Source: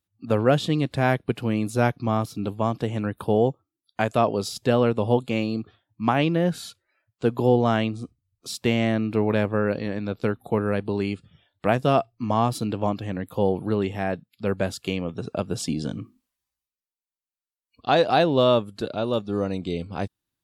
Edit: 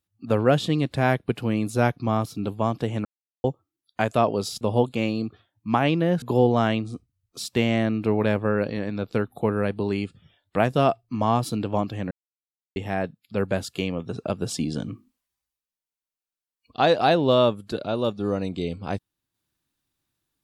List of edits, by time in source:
3.05–3.44 mute
4.61–4.95 cut
6.56–7.31 cut
13.2–13.85 mute

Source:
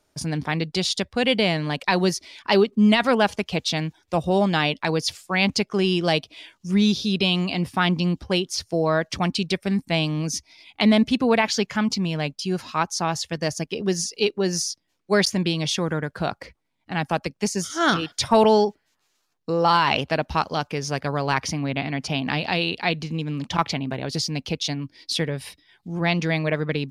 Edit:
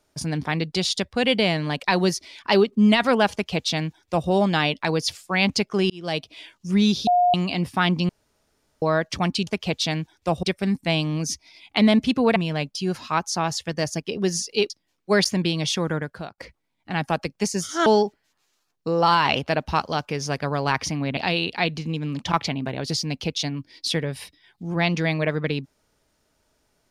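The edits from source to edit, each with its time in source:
3.33–4.29 copy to 9.47
5.9–6.32 fade in
7.07–7.34 bleep 714 Hz -14.5 dBFS
8.09–8.82 room tone
11.4–12 cut
14.34–14.71 cut
15.98–16.39 fade out
17.87–18.48 cut
21.79–22.42 cut

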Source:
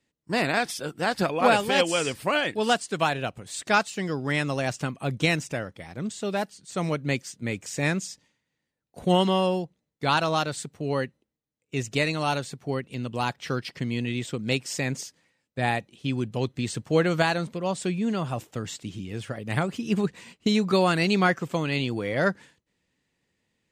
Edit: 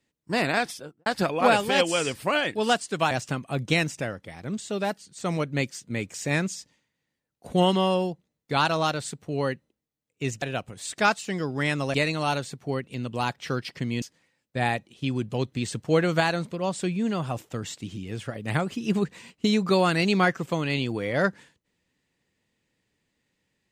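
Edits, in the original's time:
0.6–1.06 studio fade out
3.11–4.63 move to 11.94
14.02–15.04 cut

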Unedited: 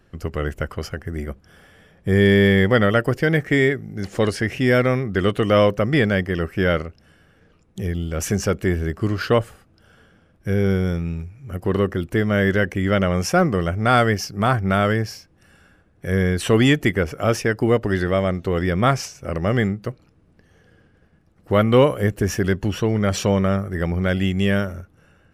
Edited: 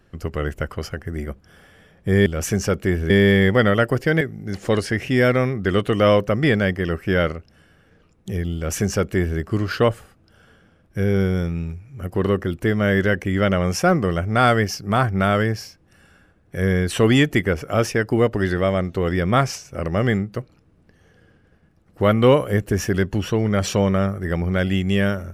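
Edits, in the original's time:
3.37–3.71 cut
8.05–8.89 copy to 2.26

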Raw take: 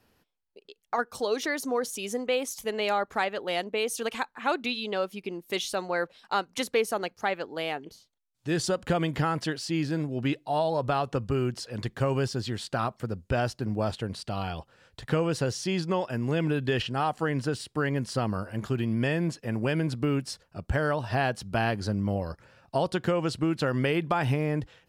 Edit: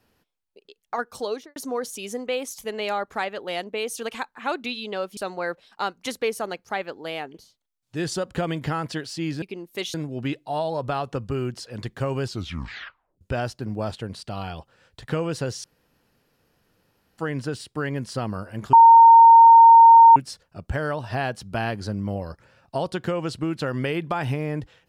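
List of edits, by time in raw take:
1.26–1.56 studio fade out
5.17–5.69 move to 9.94
12.24 tape stop 0.97 s
15.64–17.18 room tone
18.73–20.16 bleep 918 Hz -6.5 dBFS

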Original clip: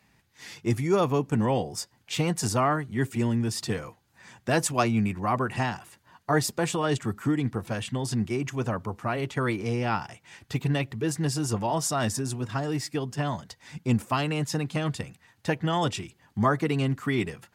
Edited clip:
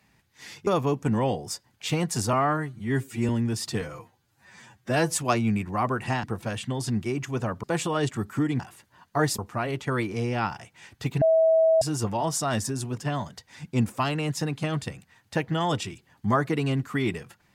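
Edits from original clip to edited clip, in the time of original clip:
0.67–0.94 cut
2.6–3.24 stretch 1.5×
3.76–4.67 stretch 1.5×
5.73–6.52 swap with 7.48–8.88
10.71–11.31 bleep 647 Hz -16 dBFS
12.47–13.1 cut

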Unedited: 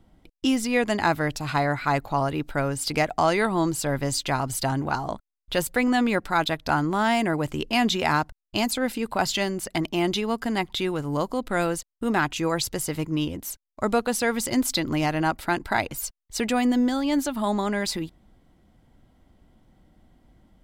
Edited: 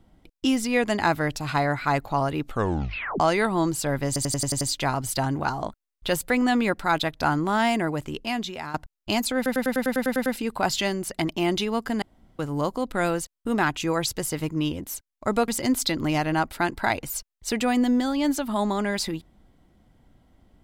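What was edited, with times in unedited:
2.43 tape stop 0.77 s
4.07 stutter 0.09 s, 7 plays
7.14–8.2 fade out, to -15.5 dB
8.82 stutter 0.10 s, 10 plays
10.58–10.95 room tone
14.04–14.36 cut

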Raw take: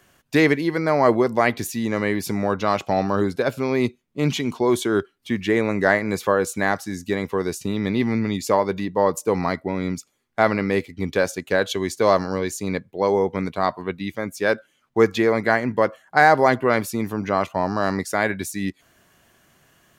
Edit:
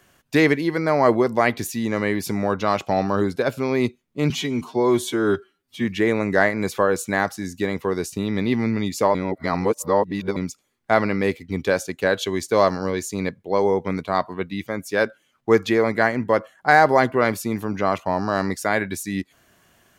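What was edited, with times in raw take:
4.3–5.33 stretch 1.5×
8.63–9.85 reverse

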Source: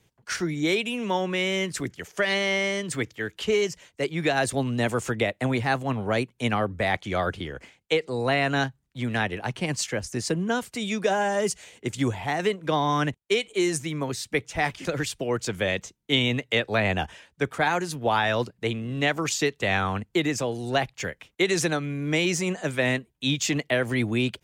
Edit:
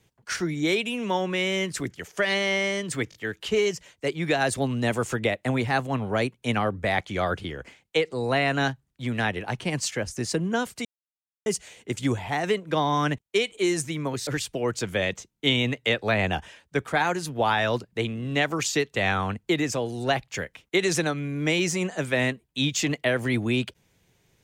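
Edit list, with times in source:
3.1 stutter 0.02 s, 3 plays
10.81–11.42 mute
14.23–14.93 cut

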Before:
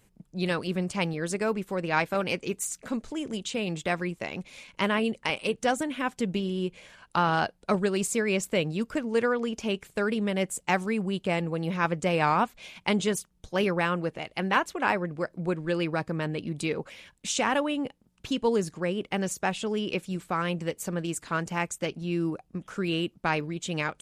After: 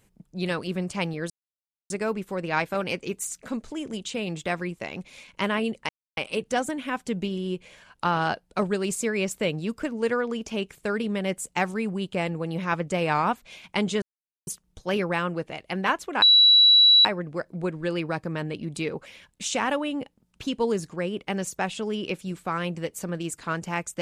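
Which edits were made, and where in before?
1.3 insert silence 0.60 s
5.29 insert silence 0.28 s
13.14 insert silence 0.45 s
14.89 add tone 3920 Hz -12 dBFS 0.83 s

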